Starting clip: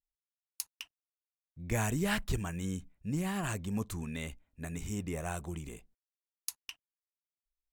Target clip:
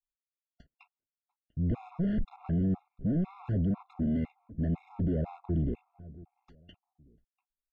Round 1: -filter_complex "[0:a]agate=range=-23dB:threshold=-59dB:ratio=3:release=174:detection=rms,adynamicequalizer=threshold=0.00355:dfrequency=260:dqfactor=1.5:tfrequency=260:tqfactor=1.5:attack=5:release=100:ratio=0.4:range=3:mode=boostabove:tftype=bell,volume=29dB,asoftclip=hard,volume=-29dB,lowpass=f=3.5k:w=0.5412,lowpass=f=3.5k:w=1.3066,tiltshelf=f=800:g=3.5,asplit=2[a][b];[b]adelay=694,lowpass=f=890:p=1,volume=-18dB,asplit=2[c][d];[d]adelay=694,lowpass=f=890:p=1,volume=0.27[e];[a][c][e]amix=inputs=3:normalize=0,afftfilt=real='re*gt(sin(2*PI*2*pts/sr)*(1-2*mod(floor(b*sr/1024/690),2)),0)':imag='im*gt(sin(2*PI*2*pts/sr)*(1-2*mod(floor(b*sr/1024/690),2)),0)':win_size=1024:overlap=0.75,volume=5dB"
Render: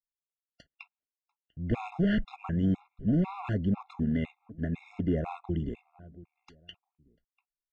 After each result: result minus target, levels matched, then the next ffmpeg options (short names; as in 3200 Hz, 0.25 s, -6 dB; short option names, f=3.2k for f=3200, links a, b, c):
1000 Hz band +6.5 dB; overloaded stage: distortion -8 dB
-filter_complex "[0:a]agate=range=-23dB:threshold=-59dB:ratio=3:release=174:detection=rms,adynamicequalizer=threshold=0.00355:dfrequency=260:dqfactor=1.5:tfrequency=260:tqfactor=1.5:attack=5:release=100:ratio=0.4:range=3:mode=boostabove:tftype=bell,volume=29dB,asoftclip=hard,volume=-29dB,lowpass=f=3.5k:w=0.5412,lowpass=f=3.5k:w=1.3066,tiltshelf=f=800:g=12,asplit=2[a][b];[b]adelay=694,lowpass=f=890:p=1,volume=-18dB,asplit=2[c][d];[d]adelay=694,lowpass=f=890:p=1,volume=0.27[e];[a][c][e]amix=inputs=3:normalize=0,afftfilt=real='re*gt(sin(2*PI*2*pts/sr)*(1-2*mod(floor(b*sr/1024/690),2)),0)':imag='im*gt(sin(2*PI*2*pts/sr)*(1-2*mod(floor(b*sr/1024/690),2)),0)':win_size=1024:overlap=0.75,volume=5dB"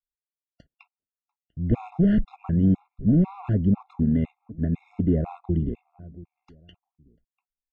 overloaded stage: distortion -8 dB
-filter_complex "[0:a]agate=range=-23dB:threshold=-59dB:ratio=3:release=174:detection=rms,adynamicequalizer=threshold=0.00355:dfrequency=260:dqfactor=1.5:tfrequency=260:tqfactor=1.5:attack=5:release=100:ratio=0.4:range=3:mode=boostabove:tftype=bell,volume=41dB,asoftclip=hard,volume=-41dB,lowpass=f=3.5k:w=0.5412,lowpass=f=3.5k:w=1.3066,tiltshelf=f=800:g=12,asplit=2[a][b];[b]adelay=694,lowpass=f=890:p=1,volume=-18dB,asplit=2[c][d];[d]adelay=694,lowpass=f=890:p=1,volume=0.27[e];[a][c][e]amix=inputs=3:normalize=0,afftfilt=real='re*gt(sin(2*PI*2*pts/sr)*(1-2*mod(floor(b*sr/1024/690),2)),0)':imag='im*gt(sin(2*PI*2*pts/sr)*(1-2*mod(floor(b*sr/1024/690),2)),0)':win_size=1024:overlap=0.75,volume=5dB"